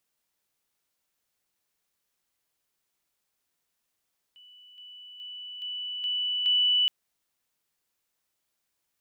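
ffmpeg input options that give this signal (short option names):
-f lavfi -i "aevalsrc='pow(10,(-50+6*floor(t/0.42))/20)*sin(2*PI*2970*t)':d=2.52:s=44100"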